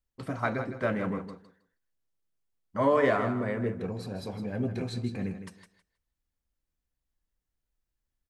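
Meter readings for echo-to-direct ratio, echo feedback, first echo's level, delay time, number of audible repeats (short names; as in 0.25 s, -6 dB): -10.0 dB, 18%, -10.0 dB, 0.159 s, 2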